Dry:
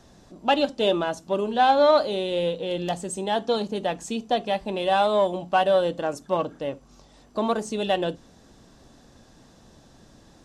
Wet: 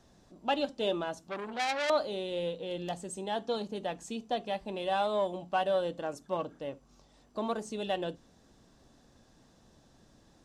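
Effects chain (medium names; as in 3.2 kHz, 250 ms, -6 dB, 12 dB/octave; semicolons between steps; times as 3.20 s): 1.23–1.90 s: transformer saturation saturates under 3.7 kHz; trim -9 dB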